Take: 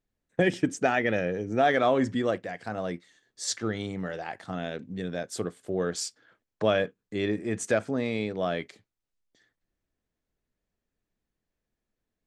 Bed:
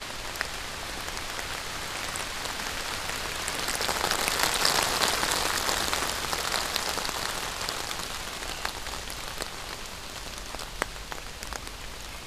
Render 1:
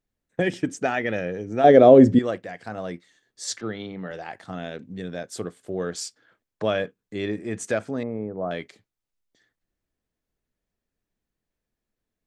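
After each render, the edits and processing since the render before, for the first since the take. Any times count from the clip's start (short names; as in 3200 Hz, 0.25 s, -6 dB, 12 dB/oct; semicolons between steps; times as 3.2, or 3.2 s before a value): 1.64–2.19 resonant low shelf 780 Hz +12 dB, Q 1.5; 3.61–4.11 elliptic band-pass 120–4100 Hz; 8.03–8.51 LPF 1200 Hz 24 dB/oct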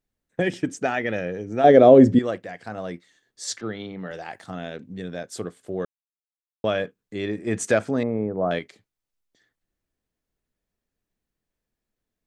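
4–4.51 high shelf 6800 Hz +9 dB; 5.85–6.64 mute; 7.47–8.59 gain +5 dB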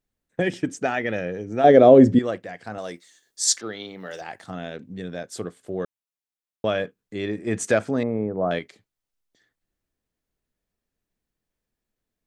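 2.78–4.21 tone controls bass -9 dB, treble +13 dB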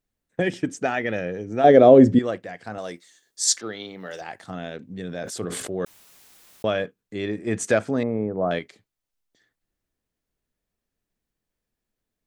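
4.93–6.67 sustainer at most 28 dB/s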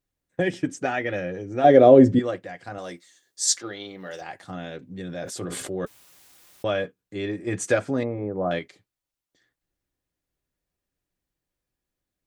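notch comb 220 Hz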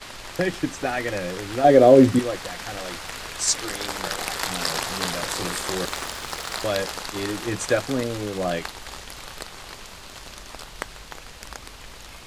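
add bed -2.5 dB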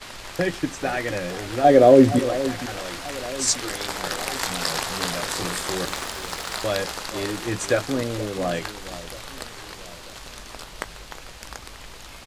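doubler 18 ms -14 dB; echo with dull and thin repeats by turns 0.469 s, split 940 Hz, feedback 65%, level -13.5 dB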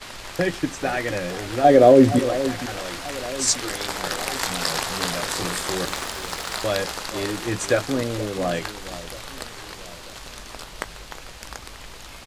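gain +1 dB; limiter -3 dBFS, peak gain reduction 2 dB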